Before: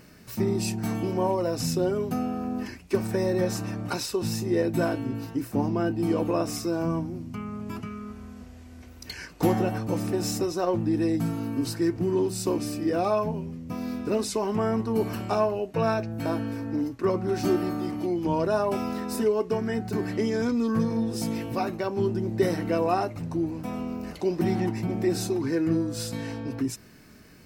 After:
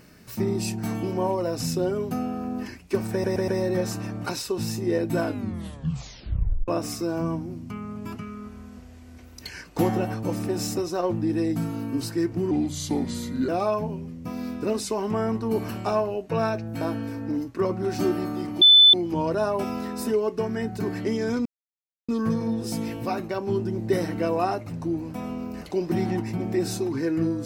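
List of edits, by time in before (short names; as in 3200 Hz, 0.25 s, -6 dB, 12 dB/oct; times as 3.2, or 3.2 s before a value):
3.12 stutter 0.12 s, 4 plays
4.87 tape stop 1.45 s
12.15–12.93 speed 80%
18.06 add tone 3510 Hz -9.5 dBFS 0.32 s
20.58 insert silence 0.63 s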